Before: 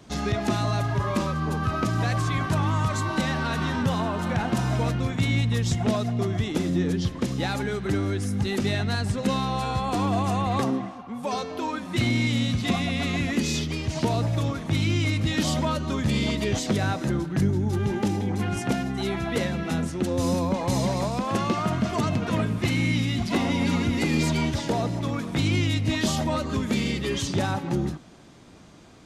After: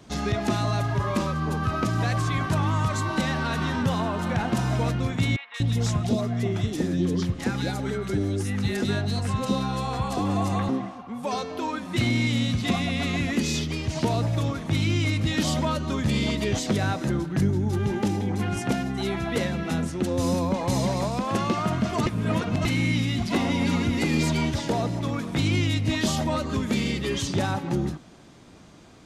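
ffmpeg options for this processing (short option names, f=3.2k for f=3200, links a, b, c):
-filter_complex "[0:a]asettb=1/sr,asplit=3[a][b][c];[a]atrim=end=5.364[d];[b]atrim=start=5.36:end=10.69,asetpts=PTS-STARTPTS,afade=t=in:d=0.004:c=qsin,afade=t=out:st=5.326:d=0.004:c=qsin,acrossover=split=860|2700[e][f][g];[g]adelay=180[h];[e]adelay=240[i];[i][f][h]amix=inputs=3:normalize=0,atrim=end_sample=235053[j];[c]atrim=start=10.686[k];[d][j]acrossfade=d=0.004:c1=hsin:c2=qsin[l];[l][k]acrossfade=d=0.004:c1=qsin:c2=hsin,asplit=3[m][n][o];[m]atrim=end=22.062[p];[n]atrim=start=22.058:end=22.652,asetpts=PTS-STARTPTS,areverse[q];[o]atrim=start=22.648[r];[p][q]acrossfade=d=0.004:c1=hsin:c2=hsin[s];[s][r]acrossfade=d=0.004:c1=hsin:c2=hsin"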